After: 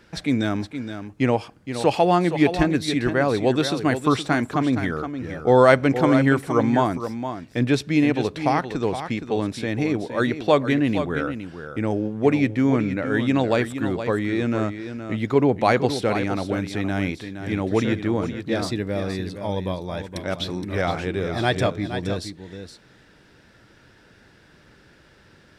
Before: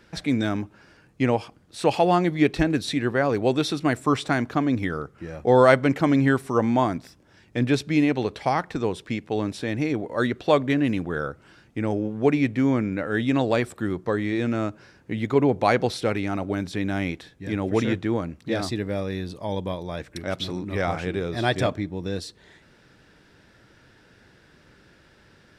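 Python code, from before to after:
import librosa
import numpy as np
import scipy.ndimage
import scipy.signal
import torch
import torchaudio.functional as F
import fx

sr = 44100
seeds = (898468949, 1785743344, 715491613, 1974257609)

y = x + 10.0 ** (-9.5 / 20.0) * np.pad(x, (int(468 * sr / 1000.0), 0))[:len(x)]
y = y * librosa.db_to_amplitude(1.5)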